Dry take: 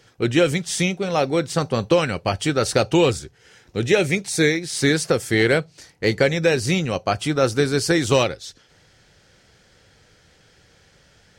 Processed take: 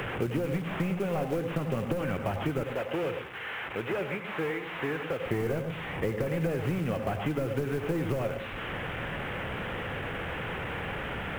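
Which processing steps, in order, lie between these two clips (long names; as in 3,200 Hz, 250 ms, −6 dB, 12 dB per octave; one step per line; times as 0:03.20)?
linear delta modulator 16 kbit/s, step −31 dBFS
0:02.63–0:05.25: high-pass filter 1,200 Hz 6 dB per octave
downward compressor 12 to 1, threshold −22 dBFS, peak gain reduction 8.5 dB
log-companded quantiser 6 bits
convolution reverb RT60 0.30 s, pre-delay 88 ms, DRR 8.5 dB
multiband upward and downward compressor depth 70%
level −4 dB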